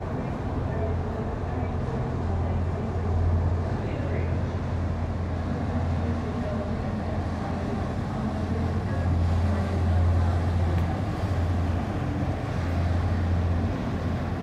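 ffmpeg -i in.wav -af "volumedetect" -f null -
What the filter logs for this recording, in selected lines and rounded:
mean_volume: -26.0 dB
max_volume: -14.7 dB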